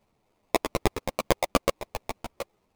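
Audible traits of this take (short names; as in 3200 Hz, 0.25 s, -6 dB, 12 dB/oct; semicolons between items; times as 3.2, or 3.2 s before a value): phasing stages 2, 0.84 Hz, lowest notch 750–4400 Hz; aliases and images of a low sample rate 1600 Hz, jitter 20%; a shimmering, thickened sound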